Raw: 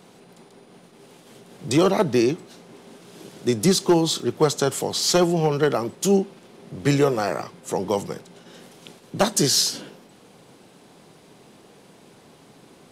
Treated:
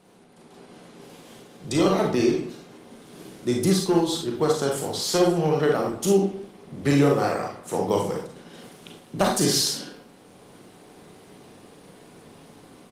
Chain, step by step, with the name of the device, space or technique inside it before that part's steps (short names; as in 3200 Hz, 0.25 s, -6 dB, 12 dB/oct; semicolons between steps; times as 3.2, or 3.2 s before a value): speakerphone in a meeting room (reverb RT60 0.45 s, pre-delay 33 ms, DRR 0 dB; speakerphone echo 0.2 s, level -18 dB; AGC gain up to 7 dB; gain -6.5 dB; Opus 32 kbps 48000 Hz)